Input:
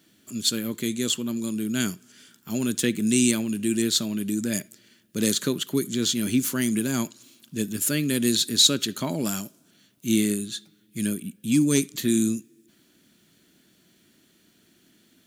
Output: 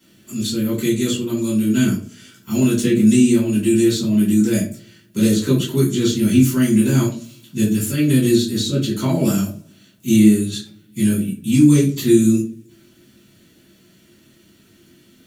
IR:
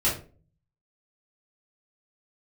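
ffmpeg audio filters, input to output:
-filter_complex "[0:a]acrossover=split=460[s0][s1];[s1]acompressor=threshold=0.0316:ratio=6[s2];[s0][s2]amix=inputs=2:normalize=0[s3];[1:a]atrim=start_sample=2205[s4];[s3][s4]afir=irnorm=-1:irlink=0,volume=0.631"

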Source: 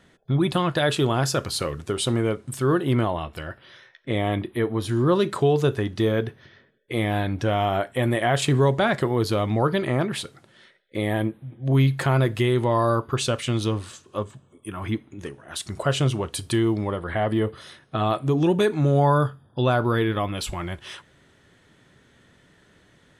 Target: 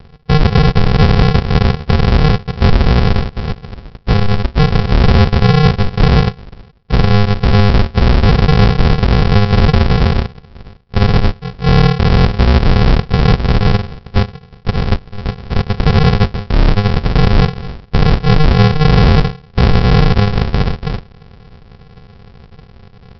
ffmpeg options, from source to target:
-af "lowshelf=f=230:g=-11.5,aresample=11025,acrusher=samples=36:mix=1:aa=0.000001,aresample=44100,alimiter=level_in=13.3:limit=0.891:release=50:level=0:latency=1,volume=0.891"

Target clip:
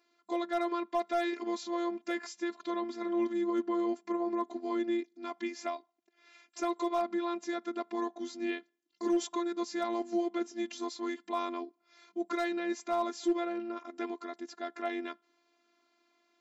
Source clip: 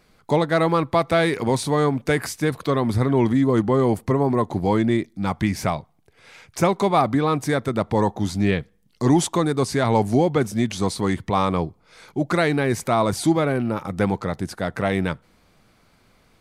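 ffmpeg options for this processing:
-af "afftfilt=real='hypot(re,im)*cos(PI*b)':imag='0':win_size=512:overlap=0.75,afftfilt=real='re*between(b*sr/4096,200,7600)':imag='im*between(b*sr/4096,200,7600)':win_size=4096:overlap=0.75,volume=4.22,asoftclip=hard,volume=0.237,volume=0.355"

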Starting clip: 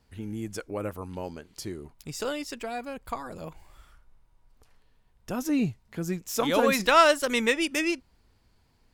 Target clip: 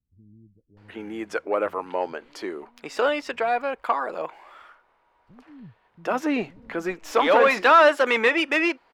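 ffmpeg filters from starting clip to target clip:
-filter_complex "[0:a]asplit=2[s0][s1];[s1]highpass=f=720:p=1,volume=10,asoftclip=type=tanh:threshold=0.398[s2];[s0][s2]amix=inputs=2:normalize=0,lowpass=f=1800:p=1,volume=0.501,bass=f=250:g=-14,treble=f=4000:g=-12,acrossover=split=150[s3][s4];[s4]adelay=770[s5];[s3][s5]amix=inputs=2:normalize=0,volume=1.26"

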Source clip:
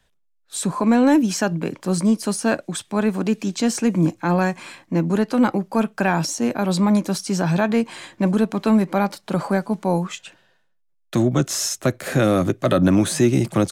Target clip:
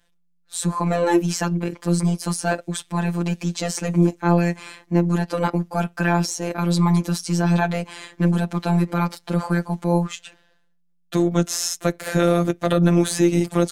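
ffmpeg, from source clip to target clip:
-af "tremolo=f=180:d=0.333,afftfilt=real='hypot(re,im)*cos(PI*b)':imag='0':win_size=1024:overlap=0.75,volume=1.58"

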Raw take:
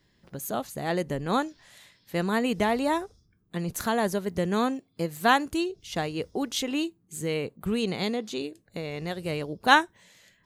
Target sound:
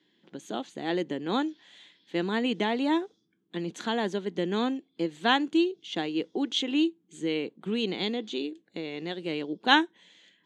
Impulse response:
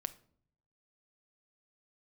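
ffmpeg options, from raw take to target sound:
-af "highpass=f=190:w=0.5412,highpass=f=190:w=1.3066,equalizer=f=320:t=q:w=4:g=8,equalizer=f=610:t=q:w=4:g=-6,equalizer=f=1200:t=q:w=4:g=-6,equalizer=f=3300:t=q:w=4:g=9,equalizer=f=5200:t=q:w=4:g=-9,lowpass=f=6300:w=0.5412,lowpass=f=6300:w=1.3066,volume=0.794"

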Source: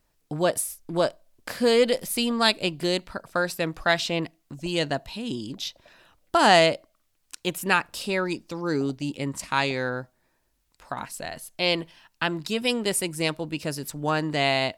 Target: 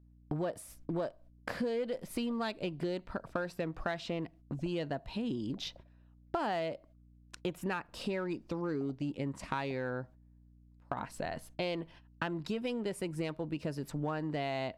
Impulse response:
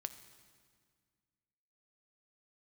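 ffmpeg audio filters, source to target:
-filter_complex "[0:a]agate=range=0.0891:threshold=0.00447:ratio=16:detection=peak,lowpass=f=1200:p=1,asplit=2[s0][s1];[s1]asoftclip=type=hard:threshold=0.0562,volume=0.376[s2];[s0][s2]amix=inputs=2:normalize=0,aeval=exprs='val(0)+0.00112*(sin(2*PI*60*n/s)+sin(2*PI*2*60*n/s)/2+sin(2*PI*3*60*n/s)/3+sin(2*PI*4*60*n/s)/4+sin(2*PI*5*60*n/s)/5)':c=same,acompressor=threshold=0.0224:ratio=6"

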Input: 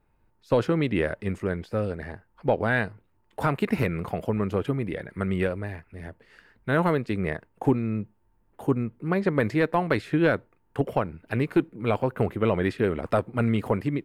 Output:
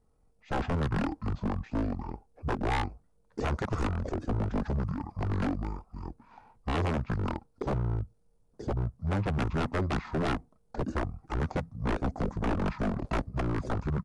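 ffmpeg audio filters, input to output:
-af "aeval=exprs='0.0708*(abs(mod(val(0)/0.0708+3,4)-2)-1)':c=same,asetrate=22696,aresample=44100,atempo=1.94306"

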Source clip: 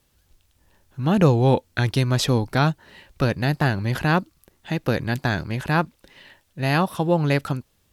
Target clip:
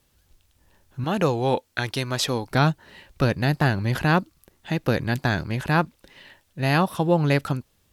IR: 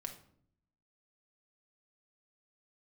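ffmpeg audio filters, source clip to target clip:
-filter_complex "[0:a]asettb=1/sr,asplit=3[s0][s1][s2];[s0]atrim=end=1.044[s3];[s1]atrim=start=1.04:end=2.51,asetpts=PTS-STARTPTS,afade=t=in:d=0.004:c=qsin,afade=t=out:st=1.466:d=0.004:c=qsin,lowshelf=f=270:g=-12[s4];[s2]atrim=start=2.506[s5];[s3][s4]acrossfade=d=0.004:c1=hsin:c2=qsin[s6];[s6][s5]acrossfade=d=0.004:c1=qsin:c2=hsin"

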